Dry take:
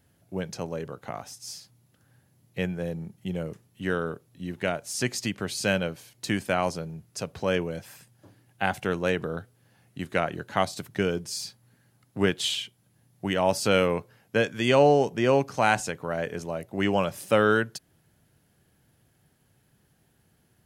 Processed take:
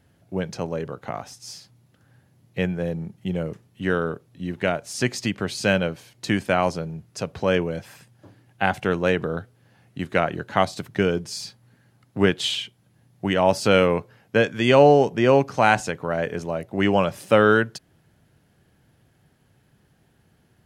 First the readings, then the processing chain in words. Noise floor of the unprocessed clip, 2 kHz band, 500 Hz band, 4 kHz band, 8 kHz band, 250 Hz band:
-66 dBFS, +4.5 dB, +5.0 dB, +3.0 dB, -0.5 dB, +5.0 dB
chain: high shelf 6700 Hz -10.5 dB; gain +5 dB

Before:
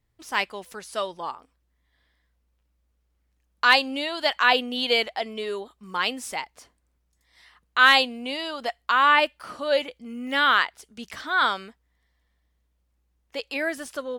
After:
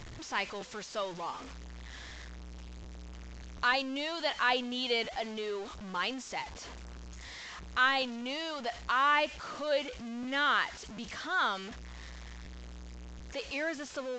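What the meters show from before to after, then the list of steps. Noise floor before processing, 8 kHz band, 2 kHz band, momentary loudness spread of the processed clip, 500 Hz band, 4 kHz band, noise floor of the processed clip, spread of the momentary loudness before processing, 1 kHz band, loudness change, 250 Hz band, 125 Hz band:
-72 dBFS, -5.0 dB, -9.5 dB, 20 LU, -7.5 dB, -9.5 dB, -46 dBFS, 18 LU, -8.5 dB, -9.5 dB, -5.0 dB, n/a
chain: zero-crossing step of -30.5 dBFS; de-esser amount 50%; crackling interface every 0.74 s, samples 512, repeat, from 0.6; gain -9 dB; µ-law 128 kbps 16000 Hz

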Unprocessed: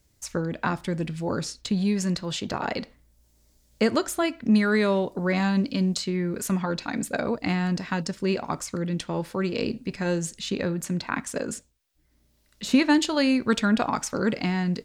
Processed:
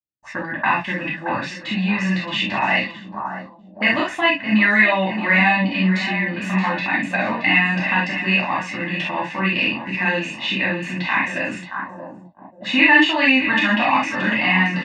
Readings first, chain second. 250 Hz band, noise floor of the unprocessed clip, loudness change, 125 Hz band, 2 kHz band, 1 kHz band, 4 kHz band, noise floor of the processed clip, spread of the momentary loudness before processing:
+2.5 dB, -65 dBFS, +7.5 dB, +2.5 dB, +16.0 dB, +10.0 dB, +9.0 dB, -43 dBFS, 8 LU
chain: feedback echo 0.624 s, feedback 51%, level -12 dB; in parallel at 0 dB: limiter -19 dBFS, peak gain reduction 10.5 dB; on the sum: gate -38 dBFS, range -37 dB; HPF 75 Hz; low shelf 190 Hz -12 dB; comb 1.1 ms, depth 82%; non-linear reverb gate 90 ms flat, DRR -6 dB; envelope low-pass 450–2400 Hz up, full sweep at -19 dBFS; gain -5.5 dB

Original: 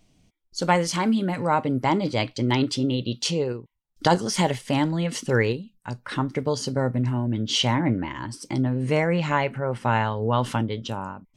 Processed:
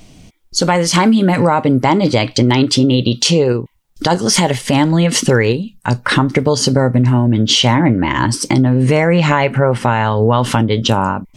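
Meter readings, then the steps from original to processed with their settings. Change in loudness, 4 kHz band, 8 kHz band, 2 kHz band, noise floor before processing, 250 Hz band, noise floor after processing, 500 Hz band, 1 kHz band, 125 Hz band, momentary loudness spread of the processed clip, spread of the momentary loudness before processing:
+11.0 dB, +12.0 dB, +14.0 dB, +10.0 dB, -69 dBFS, +11.5 dB, -49 dBFS, +10.5 dB, +9.0 dB, +11.5 dB, 5 LU, 8 LU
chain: compressor, threshold -28 dBFS, peak gain reduction 14 dB; maximiser +20.5 dB; gain -1 dB

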